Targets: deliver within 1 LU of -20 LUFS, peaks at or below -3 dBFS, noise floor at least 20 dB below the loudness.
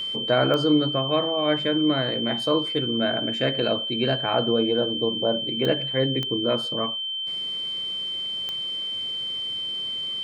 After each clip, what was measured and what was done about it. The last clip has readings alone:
clicks found 4; steady tone 3.1 kHz; tone level -27 dBFS; loudness -24.0 LUFS; peak level -8.0 dBFS; loudness target -20.0 LUFS
-> de-click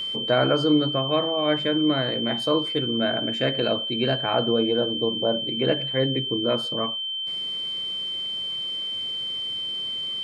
clicks found 0; steady tone 3.1 kHz; tone level -27 dBFS
-> band-stop 3.1 kHz, Q 30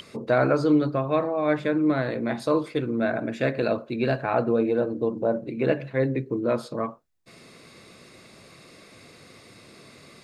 steady tone not found; loudness -25.0 LUFS; peak level -8.5 dBFS; loudness target -20.0 LUFS
-> trim +5 dB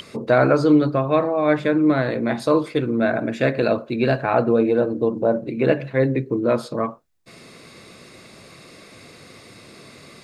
loudness -20.0 LUFS; peak level -3.5 dBFS; noise floor -46 dBFS

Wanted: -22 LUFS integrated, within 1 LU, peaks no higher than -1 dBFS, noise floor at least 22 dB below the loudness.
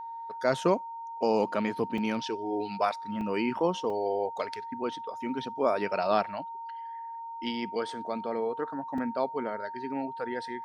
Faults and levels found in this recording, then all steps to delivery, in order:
dropouts 4; longest dropout 2.9 ms; steady tone 920 Hz; tone level -37 dBFS; loudness -31.5 LUFS; peak level -11.5 dBFS; loudness target -22.0 LUFS
-> interpolate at 1.98/3.21/3.90/8.98 s, 2.9 ms; band-stop 920 Hz, Q 30; trim +9.5 dB

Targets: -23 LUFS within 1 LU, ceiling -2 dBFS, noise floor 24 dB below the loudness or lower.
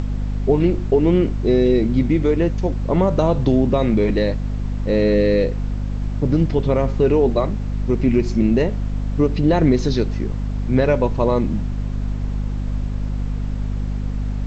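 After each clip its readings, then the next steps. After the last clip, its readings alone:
hum 50 Hz; highest harmonic 250 Hz; hum level -20 dBFS; noise floor -25 dBFS; noise floor target -44 dBFS; loudness -19.5 LUFS; peak level -4.0 dBFS; loudness target -23.0 LUFS
-> hum notches 50/100/150/200/250 Hz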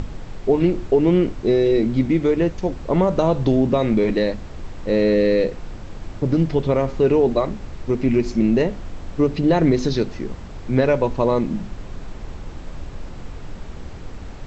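hum not found; noise floor -35 dBFS; noise floor target -44 dBFS
-> noise print and reduce 9 dB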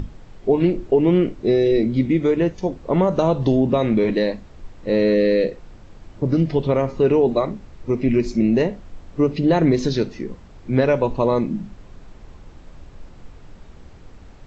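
noise floor -44 dBFS; loudness -19.5 LUFS; peak level -5.0 dBFS; loudness target -23.0 LUFS
-> trim -3.5 dB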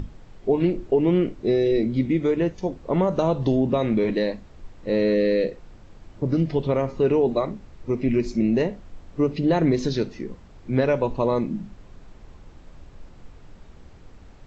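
loudness -23.0 LUFS; peak level -8.5 dBFS; noise floor -48 dBFS

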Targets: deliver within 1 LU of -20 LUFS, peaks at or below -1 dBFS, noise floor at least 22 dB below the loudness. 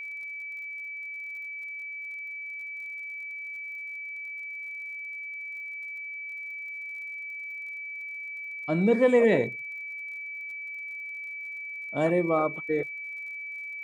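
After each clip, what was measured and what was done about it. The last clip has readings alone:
tick rate 41 per s; steady tone 2.3 kHz; tone level -35 dBFS; loudness -31.0 LUFS; peak level -11.0 dBFS; loudness target -20.0 LUFS
-> de-click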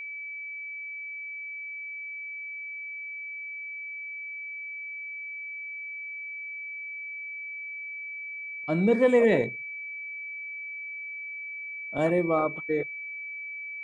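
tick rate 0 per s; steady tone 2.3 kHz; tone level -35 dBFS
-> band-stop 2.3 kHz, Q 30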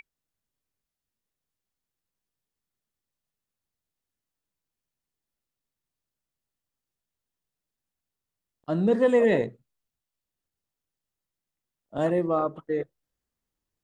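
steady tone not found; loudness -25.0 LUFS; peak level -11.5 dBFS; loudness target -20.0 LUFS
-> trim +5 dB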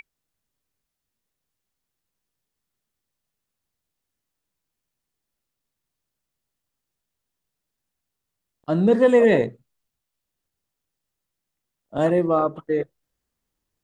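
loudness -20.0 LUFS; peak level -6.5 dBFS; noise floor -83 dBFS

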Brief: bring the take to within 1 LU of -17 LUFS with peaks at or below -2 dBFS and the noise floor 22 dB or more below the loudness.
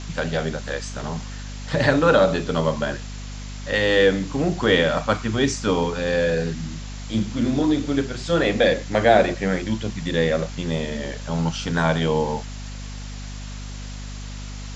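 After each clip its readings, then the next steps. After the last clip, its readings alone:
hum 50 Hz; highest harmonic 250 Hz; hum level -31 dBFS; noise floor -33 dBFS; noise floor target -44 dBFS; loudness -22.0 LUFS; peak level -3.0 dBFS; loudness target -17.0 LUFS
-> hum notches 50/100/150/200/250 Hz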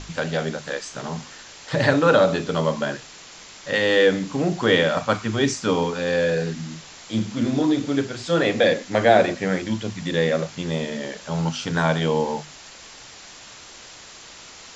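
hum not found; noise floor -43 dBFS; noise floor target -44 dBFS
-> noise reduction 6 dB, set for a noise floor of -43 dBFS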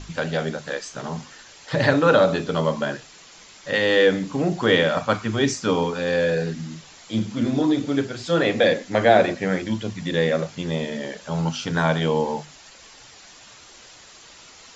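noise floor -47 dBFS; loudness -22.0 LUFS; peak level -3.0 dBFS; loudness target -17.0 LUFS
-> trim +5 dB; peak limiter -2 dBFS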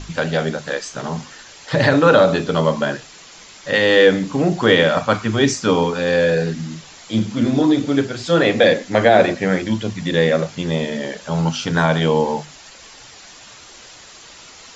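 loudness -17.5 LUFS; peak level -2.0 dBFS; noise floor -42 dBFS

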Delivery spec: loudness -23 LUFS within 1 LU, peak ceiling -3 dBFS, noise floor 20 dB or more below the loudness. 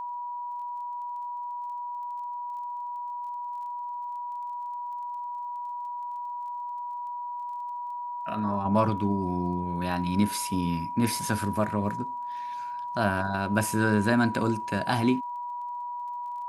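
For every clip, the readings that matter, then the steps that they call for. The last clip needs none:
tick rate 20 per s; steady tone 970 Hz; tone level -32 dBFS; loudness -30.0 LUFS; peak level -9.5 dBFS; loudness target -23.0 LUFS
-> de-click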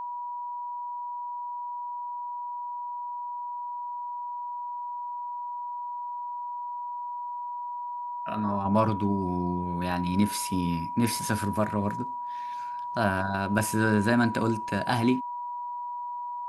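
tick rate 0.061 per s; steady tone 970 Hz; tone level -32 dBFS
-> band-stop 970 Hz, Q 30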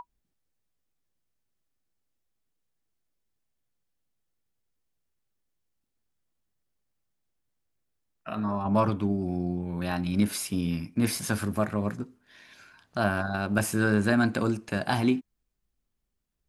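steady tone not found; loudness -28.0 LUFS; peak level -9.0 dBFS; loudness target -23.0 LUFS
-> trim +5 dB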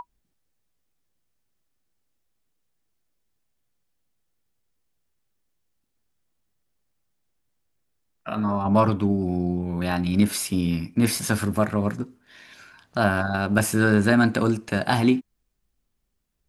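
loudness -23.0 LUFS; peak level -4.0 dBFS; noise floor -75 dBFS

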